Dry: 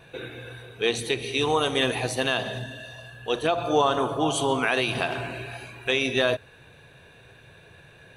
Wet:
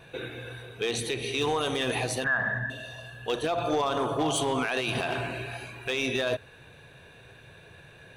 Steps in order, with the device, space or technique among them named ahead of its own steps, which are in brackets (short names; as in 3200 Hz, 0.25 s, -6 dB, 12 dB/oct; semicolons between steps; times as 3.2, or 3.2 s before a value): limiter into clipper (limiter -16.5 dBFS, peak gain reduction 7 dB; hard clip -20 dBFS, distortion -20 dB); 2.24–2.7 EQ curve 220 Hz 0 dB, 370 Hz -12 dB, 1800 Hz +12 dB, 2600 Hz -21 dB